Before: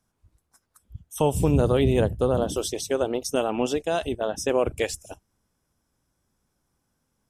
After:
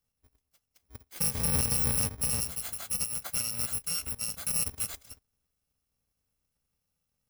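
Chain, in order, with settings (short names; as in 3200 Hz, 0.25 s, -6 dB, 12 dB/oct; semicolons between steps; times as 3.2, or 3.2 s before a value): FFT order left unsorted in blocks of 128 samples; 2.09–2.61 three-band expander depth 40%; gain -7.5 dB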